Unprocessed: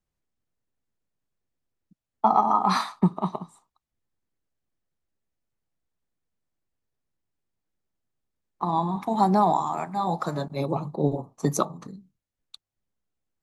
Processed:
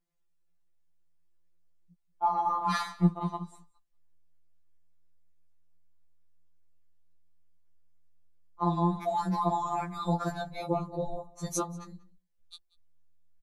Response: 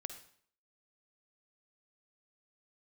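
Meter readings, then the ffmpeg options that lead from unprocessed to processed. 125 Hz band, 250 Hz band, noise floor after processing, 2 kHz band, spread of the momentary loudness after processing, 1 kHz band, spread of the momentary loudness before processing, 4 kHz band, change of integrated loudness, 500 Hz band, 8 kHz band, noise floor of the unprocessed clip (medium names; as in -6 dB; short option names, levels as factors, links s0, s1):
-3.0 dB, -5.0 dB, -71 dBFS, -2.0 dB, 10 LU, -6.5 dB, 11 LU, -5.0 dB, -6.0 dB, -6.0 dB, -2.5 dB, under -85 dBFS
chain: -filter_complex "[0:a]asubboost=boost=6.5:cutoff=63,alimiter=limit=0.178:level=0:latency=1:release=116,asplit=2[s0][s1];[s1]adelay=186.6,volume=0.0891,highshelf=f=4000:g=-4.2[s2];[s0][s2]amix=inputs=2:normalize=0,afftfilt=real='re*2.83*eq(mod(b,8),0)':imag='im*2.83*eq(mod(b,8),0)':win_size=2048:overlap=0.75"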